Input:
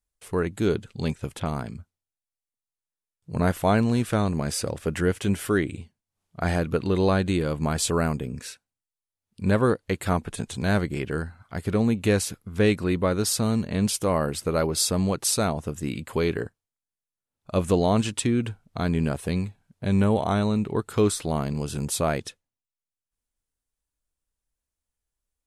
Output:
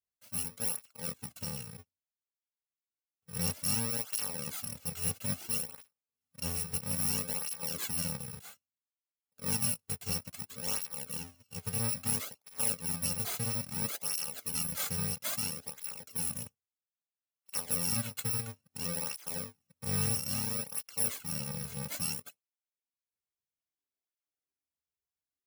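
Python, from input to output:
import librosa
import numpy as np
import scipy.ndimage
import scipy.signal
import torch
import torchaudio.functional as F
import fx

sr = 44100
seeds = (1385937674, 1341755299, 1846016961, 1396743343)

y = fx.bit_reversed(x, sr, seeds[0], block=128)
y = scipy.signal.sosfilt(scipy.signal.butter(2, 79.0, 'highpass', fs=sr, output='sos'), y)
y = fx.flanger_cancel(y, sr, hz=0.6, depth_ms=3.7)
y = y * librosa.db_to_amplitude(-7.5)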